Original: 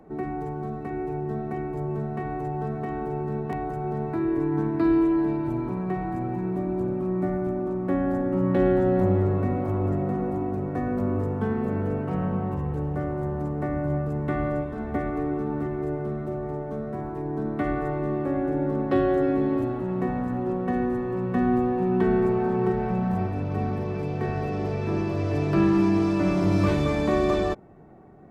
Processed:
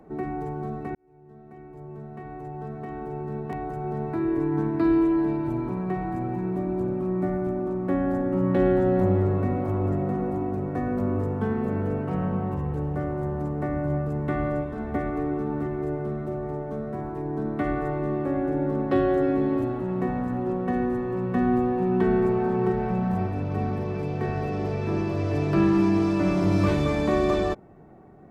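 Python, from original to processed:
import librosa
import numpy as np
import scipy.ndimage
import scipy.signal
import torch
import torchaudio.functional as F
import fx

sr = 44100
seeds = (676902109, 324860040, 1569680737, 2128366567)

y = fx.edit(x, sr, fx.fade_in_span(start_s=0.95, length_s=3.35), tone=tone)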